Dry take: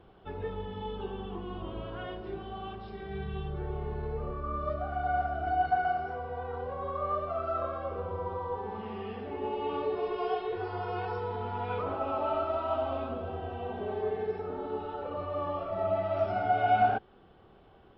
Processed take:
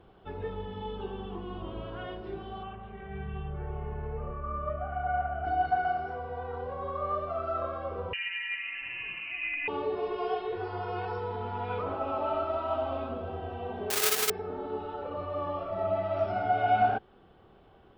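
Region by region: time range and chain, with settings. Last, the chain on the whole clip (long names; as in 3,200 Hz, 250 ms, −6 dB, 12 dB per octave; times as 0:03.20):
0:02.63–0:05.45: Butterworth low-pass 3,000 Hz 48 dB per octave + parametric band 320 Hz −12 dB 0.46 octaves
0:08.13–0:09.68: hard clipping −26.5 dBFS + voice inversion scrambler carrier 2,900 Hz
0:13.90–0:14.30: each half-wave held at its own peak + spectral tilt +4 dB per octave
whole clip: no processing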